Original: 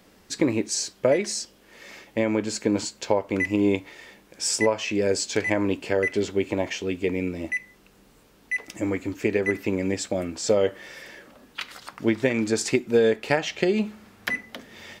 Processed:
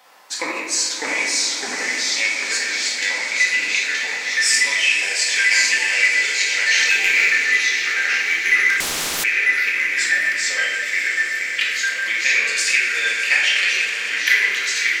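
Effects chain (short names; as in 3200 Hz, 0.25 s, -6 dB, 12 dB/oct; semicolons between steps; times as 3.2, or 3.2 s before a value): high-pass sweep 870 Hz -> 2300 Hz, 0.31–1.12; 6.8–7.3 sample leveller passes 2; swelling echo 0.122 s, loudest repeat 5, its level -15 dB; reverb RT60 1.1 s, pre-delay 4 ms, DRR -3.5 dB; echoes that change speed 0.552 s, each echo -2 st, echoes 2; 8.8–9.24 spectral compressor 10:1; gain +3 dB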